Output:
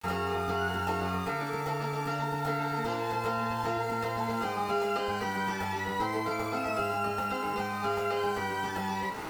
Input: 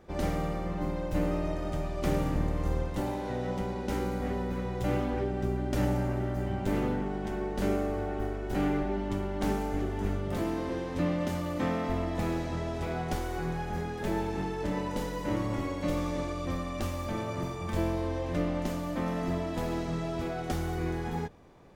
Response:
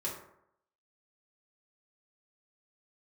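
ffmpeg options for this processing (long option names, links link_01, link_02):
-filter_complex "[0:a]areverse,acompressor=mode=upward:threshold=-38dB:ratio=2.5,areverse,acrusher=bits=7:mix=0:aa=0.000001,acrossover=split=230|940[link_01][link_02][link_03];[link_01]acompressor=threshold=-45dB:ratio=4[link_04];[link_02]acompressor=threshold=-44dB:ratio=4[link_05];[link_03]acompressor=threshold=-54dB:ratio=4[link_06];[link_04][link_05][link_06]amix=inputs=3:normalize=0[link_07];[1:a]atrim=start_sample=2205[link_08];[link_07][link_08]afir=irnorm=-1:irlink=0,asetrate=103194,aresample=44100,volume=6dB"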